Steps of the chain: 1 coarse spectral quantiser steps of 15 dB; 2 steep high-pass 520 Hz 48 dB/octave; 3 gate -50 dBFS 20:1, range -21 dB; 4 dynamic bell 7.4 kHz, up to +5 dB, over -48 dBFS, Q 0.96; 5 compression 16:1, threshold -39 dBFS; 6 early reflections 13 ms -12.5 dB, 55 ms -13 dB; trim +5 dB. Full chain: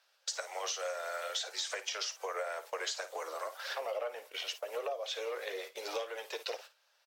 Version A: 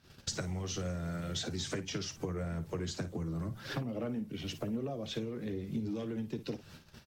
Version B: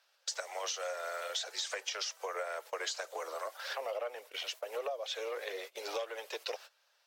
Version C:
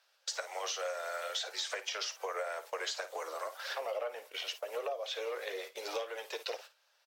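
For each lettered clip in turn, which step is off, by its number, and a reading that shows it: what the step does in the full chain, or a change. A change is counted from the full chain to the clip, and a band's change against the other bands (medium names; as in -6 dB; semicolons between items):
2, 250 Hz band +28.0 dB; 6, echo-to-direct -9.5 dB to none; 4, 8 kHz band -2.0 dB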